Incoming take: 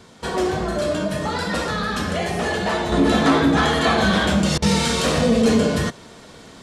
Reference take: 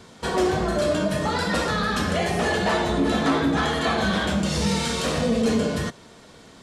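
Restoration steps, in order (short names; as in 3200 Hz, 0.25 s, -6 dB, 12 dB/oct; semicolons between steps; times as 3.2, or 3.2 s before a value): interpolate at 4.58, 41 ms; gain correction -5 dB, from 2.92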